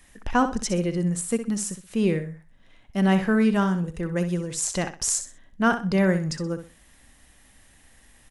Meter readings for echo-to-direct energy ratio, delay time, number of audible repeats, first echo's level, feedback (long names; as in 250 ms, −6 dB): −9.5 dB, 63 ms, 3, −10.0 dB, 26%